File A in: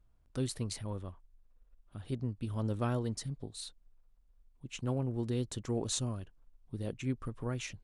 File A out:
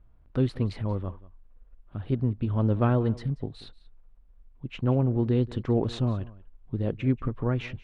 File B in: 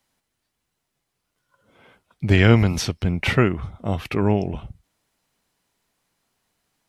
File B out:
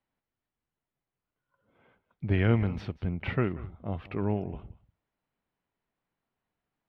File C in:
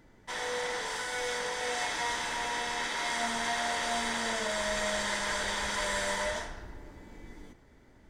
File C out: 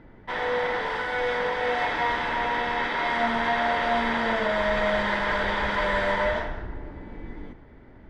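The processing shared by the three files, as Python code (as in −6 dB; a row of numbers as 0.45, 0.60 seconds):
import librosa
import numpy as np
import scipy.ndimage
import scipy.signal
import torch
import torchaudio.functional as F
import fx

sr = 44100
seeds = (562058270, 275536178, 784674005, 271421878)

y = fx.air_absorb(x, sr, metres=410.0)
y = y + 10.0 ** (-19.5 / 20.0) * np.pad(y, (int(184 * sr / 1000.0), 0))[:len(y)]
y = y * 10.0 ** (-12 / 20.0) / np.max(np.abs(y))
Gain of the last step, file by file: +10.5, −9.0, +10.5 decibels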